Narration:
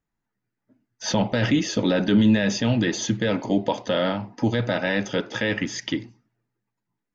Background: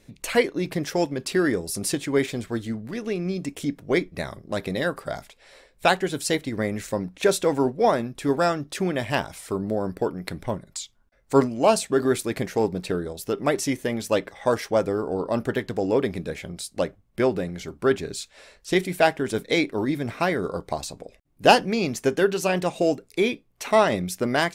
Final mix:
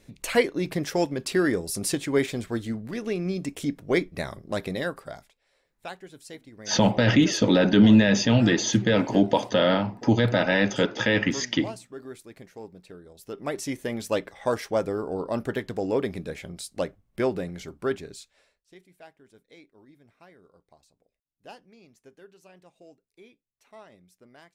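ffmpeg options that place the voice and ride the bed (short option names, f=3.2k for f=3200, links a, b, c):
-filter_complex "[0:a]adelay=5650,volume=2dB[a];[1:a]volume=14.5dB,afade=t=out:st=4.54:d=0.87:silence=0.125893,afade=t=in:st=13.03:d=0.93:silence=0.16788,afade=t=out:st=17.57:d=1.06:silence=0.0473151[b];[a][b]amix=inputs=2:normalize=0"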